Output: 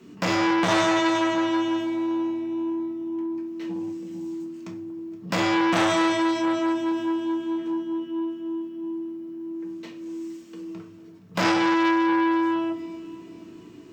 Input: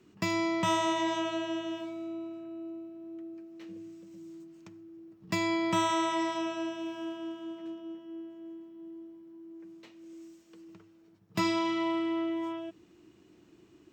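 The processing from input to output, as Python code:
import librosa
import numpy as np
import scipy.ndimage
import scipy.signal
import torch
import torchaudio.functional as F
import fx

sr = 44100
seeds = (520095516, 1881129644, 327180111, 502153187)

y = fx.highpass(x, sr, hz=140.0, slope=6)
y = fx.low_shelf(y, sr, hz=200.0, db=5.5)
y = fx.echo_alternate(y, sr, ms=235, hz=1200.0, feedback_pct=58, wet_db=-13.5)
y = fx.room_shoebox(y, sr, seeds[0], volume_m3=230.0, walls='furnished', distance_m=1.6)
y = fx.transformer_sat(y, sr, knee_hz=2000.0)
y = y * librosa.db_to_amplitude(8.5)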